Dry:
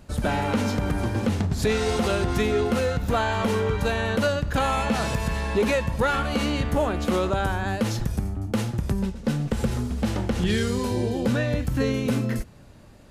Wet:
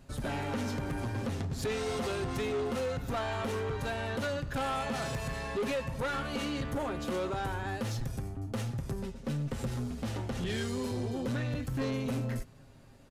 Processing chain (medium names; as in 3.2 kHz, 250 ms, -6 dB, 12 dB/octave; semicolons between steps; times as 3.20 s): comb 7.5 ms, depth 54%; saturation -20.5 dBFS, distortion -13 dB; trim -7.5 dB